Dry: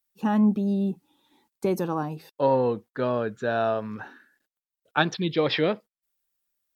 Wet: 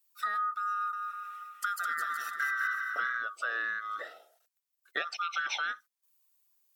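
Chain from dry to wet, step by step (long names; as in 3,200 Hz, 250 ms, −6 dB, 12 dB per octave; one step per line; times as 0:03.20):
neighbouring bands swapped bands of 1,000 Hz
high-pass filter 600 Hz 12 dB per octave
high-shelf EQ 3,800 Hz +8 dB
downward compressor 6 to 1, threshold −31 dBFS, peak gain reduction 14.5 dB
0:00.72–0:03.17: bouncing-ball delay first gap 210 ms, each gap 0.8×, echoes 5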